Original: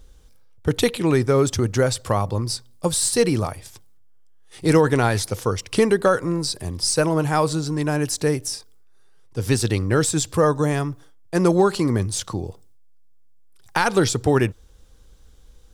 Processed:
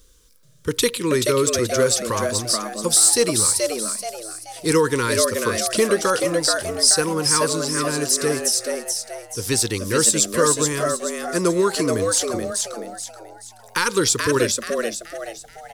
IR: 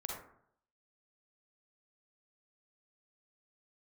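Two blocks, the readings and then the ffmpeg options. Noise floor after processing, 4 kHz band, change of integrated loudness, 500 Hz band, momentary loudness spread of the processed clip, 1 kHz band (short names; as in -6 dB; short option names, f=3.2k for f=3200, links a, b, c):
-47 dBFS, +6.5 dB, +2.0 dB, +0.5 dB, 12 LU, -0.5 dB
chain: -filter_complex "[0:a]asuperstop=centerf=710:order=12:qfactor=2,bass=f=250:g=-8,treble=f=4k:g=8,asplit=2[a][b];[b]asplit=5[c][d][e][f][g];[c]adelay=430,afreqshift=110,volume=-4dB[h];[d]adelay=860,afreqshift=220,volume=-12.2dB[i];[e]adelay=1290,afreqshift=330,volume=-20.4dB[j];[f]adelay=1720,afreqshift=440,volume=-28.5dB[k];[g]adelay=2150,afreqshift=550,volume=-36.7dB[l];[h][i][j][k][l]amix=inputs=5:normalize=0[m];[a][m]amix=inputs=2:normalize=0"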